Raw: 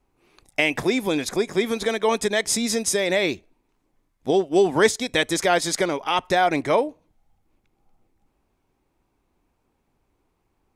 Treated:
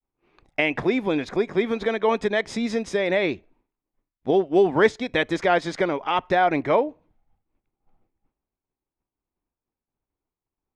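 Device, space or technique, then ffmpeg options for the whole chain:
hearing-loss simulation: -af "lowpass=2600,agate=range=-33dB:threshold=-57dB:ratio=3:detection=peak"

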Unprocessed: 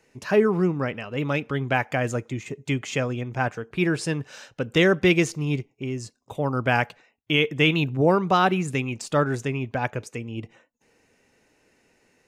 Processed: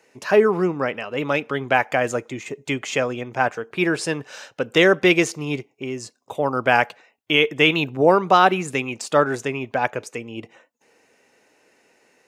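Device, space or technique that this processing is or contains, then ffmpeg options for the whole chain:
filter by subtraction: -filter_complex "[0:a]asplit=2[link_01][link_02];[link_02]lowpass=590,volume=-1[link_03];[link_01][link_03]amix=inputs=2:normalize=0,volume=4dB"

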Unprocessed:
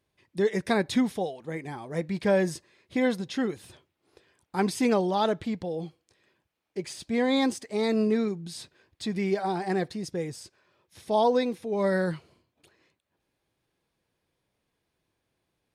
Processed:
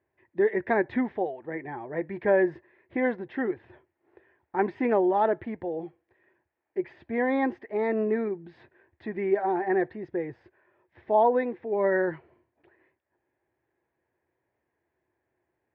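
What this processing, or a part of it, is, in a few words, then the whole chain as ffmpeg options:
bass cabinet: -af "highpass=74,equalizer=frequency=75:width_type=q:width=4:gain=5,equalizer=frequency=180:width_type=q:width=4:gain=-9,equalizer=frequency=360:width_type=q:width=4:gain=9,equalizer=frequency=640:width_type=q:width=4:gain=4,equalizer=frequency=1200:width_type=q:width=4:gain=-4,equalizer=frequency=1800:width_type=q:width=4:gain=9,lowpass=frequency=2200:width=0.5412,lowpass=frequency=2200:width=1.3066,equalizer=frequency=900:width=2.5:gain=6,volume=-3dB"

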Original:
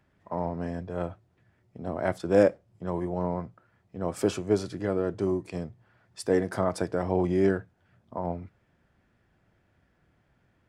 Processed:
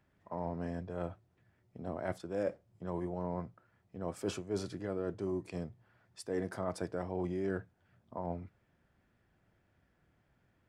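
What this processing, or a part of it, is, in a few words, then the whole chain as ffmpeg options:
compression on the reversed sound: -af "areverse,acompressor=threshold=-27dB:ratio=5,areverse,volume=-5dB"

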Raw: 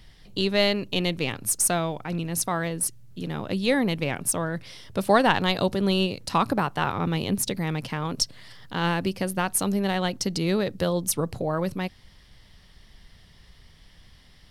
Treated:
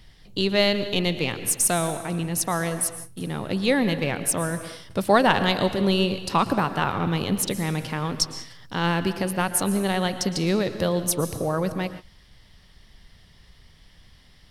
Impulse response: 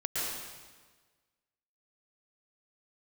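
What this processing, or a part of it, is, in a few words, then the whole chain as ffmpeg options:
keyed gated reverb: -filter_complex "[0:a]asplit=3[link_01][link_02][link_03];[1:a]atrim=start_sample=2205[link_04];[link_02][link_04]afir=irnorm=-1:irlink=0[link_05];[link_03]apad=whole_len=639663[link_06];[link_05][link_06]sidechaingate=range=-33dB:threshold=-42dB:ratio=16:detection=peak,volume=-15dB[link_07];[link_01][link_07]amix=inputs=2:normalize=0"

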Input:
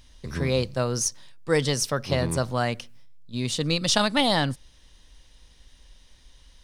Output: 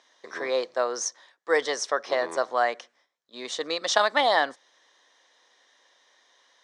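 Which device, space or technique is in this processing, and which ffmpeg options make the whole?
phone speaker on a table: -af "highpass=frequency=390:width=0.5412,highpass=frequency=390:width=1.3066,equalizer=frequency=710:width_type=q:width=4:gain=5,equalizer=frequency=1100:width_type=q:width=4:gain=5,equalizer=frequency=1800:width_type=q:width=4:gain=6,equalizer=frequency=2700:width_type=q:width=4:gain=-9,equalizer=frequency=4700:width_type=q:width=4:gain=-7,lowpass=frequency=6500:width=0.5412,lowpass=frequency=6500:width=1.3066"

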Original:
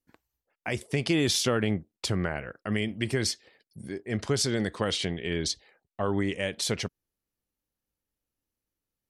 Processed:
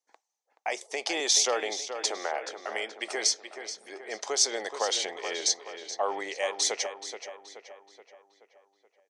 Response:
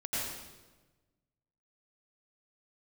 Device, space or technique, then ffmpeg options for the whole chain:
phone speaker on a table: -filter_complex "[0:a]highpass=frequency=490:width=0.5412,highpass=frequency=490:width=1.3066,equalizer=frequency=800:width_type=q:width=4:gain=8,equalizer=frequency=1500:width_type=q:width=4:gain=-6,equalizer=frequency=2800:width_type=q:width=4:gain=-5,equalizer=frequency=6200:width_type=q:width=4:gain=9,lowpass=frequency=8700:width=0.5412,lowpass=frequency=8700:width=1.3066,asettb=1/sr,asplit=3[link_01][link_02][link_03];[link_01]atrim=end=1.204[link_04];[link_02]atrim=start=1.2:end=3.15,asetpts=PTS-STARTPTS,afade=type=in:duration=0.004:curve=qsin,afade=type=out:start_time=1.946:duration=0.004:curve=qsin,highpass=frequency=220:width=0.5412,highpass=frequency=220:width=1.3066[link_05];[link_03]atrim=start=3.146[link_06];[link_04][link_05]acrossfade=duration=0.004:curve1=hsin:curve2=qsin[link_07];[link_07][link_06]acrossfade=duration=0.004:curve1=qsin:curve2=hsin,asplit=2[link_08][link_09];[link_09]adelay=427,lowpass=frequency=3900:poles=1,volume=-8.5dB,asplit=2[link_10][link_11];[link_11]adelay=427,lowpass=frequency=3900:poles=1,volume=0.52,asplit=2[link_12][link_13];[link_13]adelay=427,lowpass=frequency=3900:poles=1,volume=0.52,asplit=2[link_14][link_15];[link_15]adelay=427,lowpass=frequency=3900:poles=1,volume=0.52,asplit=2[link_16][link_17];[link_17]adelay=427,lowpass=frequency=3900:poles=1,volume=0.52,asplit=2[link_18][link_19];[link_19]adelay=427,lowpass=frequency=3900:poles=1,volume=0.52[link_20];[link_08][link_10][link_12][link_14][link_16][link_18][link_20]amix=inputs=7:normalize=0,volume=1.5dB"

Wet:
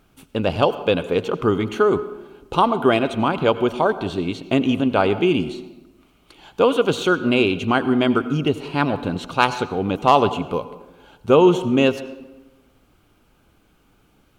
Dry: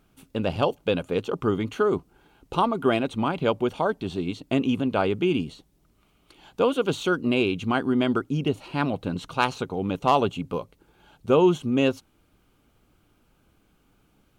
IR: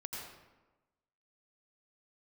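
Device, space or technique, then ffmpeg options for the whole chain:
filtered reverb send: -filter_complex "[0:a]asplit=2[link_01][link_02];[link_02]highpass=frequency=170:width=0.5412,highpass=frequency=170:width=1.3066,lowpass=7100[link_03];[1:a]atrim=start_sample=2205[link_04];[link_03][link_04]afir=irnorm=-1:irlink=0,volume=-9.5dB[link_05];[link_01][link_05]amix=inputs=2:normalize=0,volume=4.5dB"

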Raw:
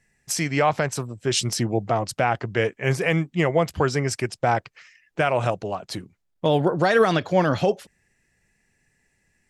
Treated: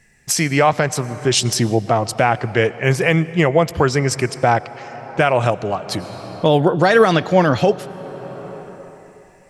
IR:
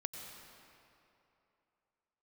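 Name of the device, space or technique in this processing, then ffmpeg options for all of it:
ducked reverb: -filter_complex "[0:a]asplit=3[link_01][link_02][link_03];[1:a]atrim=start_sample=2205[link_04];[link_02][link_04]afir=irnorm=-1:irlink=0[link_05];[link_03]apad=whole_len=418771[link_06];[link_05][link_06]sidechaincompress=threshold=-33dB:ratio=8:attack=16:release=697,volume=4.5dB[link_07];[link_01][link_07]amix=inputs=2:normalize=0,volume=4.5dB"

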